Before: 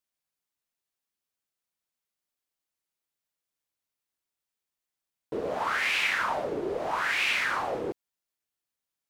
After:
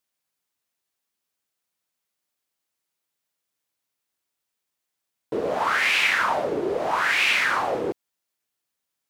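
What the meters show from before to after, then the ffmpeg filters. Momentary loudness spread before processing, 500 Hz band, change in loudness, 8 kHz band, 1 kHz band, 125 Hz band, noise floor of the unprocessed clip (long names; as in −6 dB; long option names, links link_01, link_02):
11 LU, +6.0 dB, +6.0 dB, +6.0 dB, +6.0 dB, +4.0 dB, below −85 dBFS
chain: -af "highpass=frequency=93:poles=1,volume=6dB"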